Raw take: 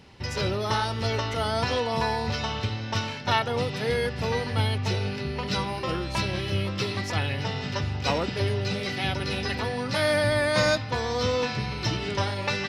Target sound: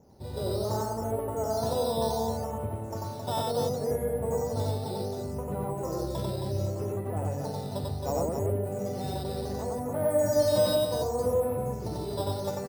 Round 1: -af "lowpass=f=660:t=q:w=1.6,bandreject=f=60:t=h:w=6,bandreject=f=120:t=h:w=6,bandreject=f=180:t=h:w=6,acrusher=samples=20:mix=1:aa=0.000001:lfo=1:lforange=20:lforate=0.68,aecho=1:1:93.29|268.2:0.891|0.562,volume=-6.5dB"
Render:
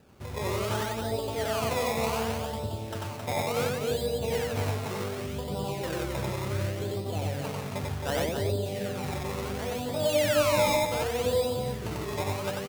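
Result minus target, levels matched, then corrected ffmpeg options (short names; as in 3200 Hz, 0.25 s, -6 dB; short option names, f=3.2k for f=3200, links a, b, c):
decimation with a swept rate: distortion +11 dB
-af "lowpass=f=660:t=q:w=1.6,bandreject=f=60:t=h:w=6,bandreject=f=120:t=h:w=6,bandreject=f=180:t=h:w=6,acrusher=samples=7:mix=1:aa=0.000001:lfo=1:lforange=7:lforate=0.68,aecho=1:1:93.29|268.2:0.891|0.562,volume=-6.5dB"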